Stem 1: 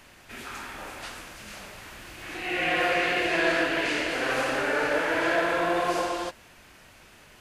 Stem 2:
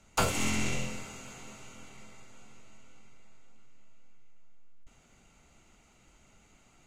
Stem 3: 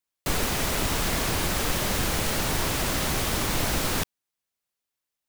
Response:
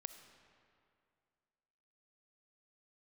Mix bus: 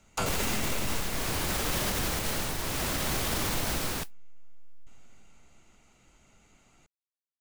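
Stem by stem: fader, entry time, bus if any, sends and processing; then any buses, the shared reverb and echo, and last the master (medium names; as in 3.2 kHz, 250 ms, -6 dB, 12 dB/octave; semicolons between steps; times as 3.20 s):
mute
-2.5 dB, 0.00 s, send -5 dB, none
+0.5 dB, 0.00 s, no send, tremolo triangle 0.68 Hz, depth 65%; modulation noise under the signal 11 dB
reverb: on, RT60 2.3 s, pre-delay 20 ms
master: peak limiter -19.5 dBFS, peak gain reduction 7 dB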